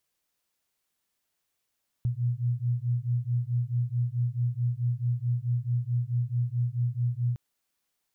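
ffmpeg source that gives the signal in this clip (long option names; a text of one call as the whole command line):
ffmpeg -f lavfi -i "aevalsrc='0.0398*(sin(2*PI*119*t)+sin(2*PI*123.6*t))':duration=5.31:sample_rate=44100" out.wav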